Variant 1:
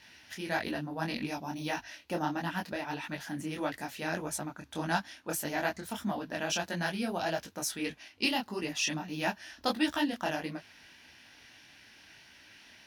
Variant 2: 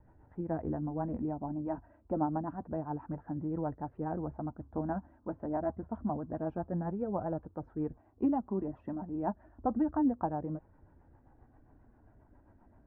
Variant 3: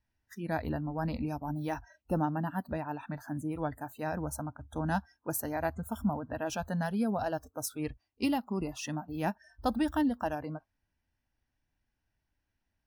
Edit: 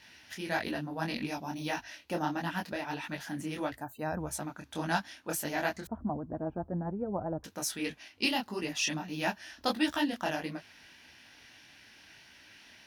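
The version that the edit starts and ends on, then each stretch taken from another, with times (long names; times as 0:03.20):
1
0:03.73–0:04.30: punch in from 3, crossfade 0.24 s
0:05.87–0:07.44: punch in from 2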